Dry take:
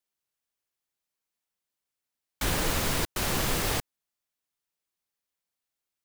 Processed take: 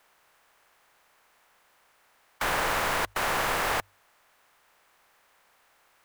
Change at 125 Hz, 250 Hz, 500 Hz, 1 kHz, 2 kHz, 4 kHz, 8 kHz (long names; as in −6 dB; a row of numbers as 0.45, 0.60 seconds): −9.5, −6.5, +1.5, +7.0, +5.5, −1.5, −4.5 decibels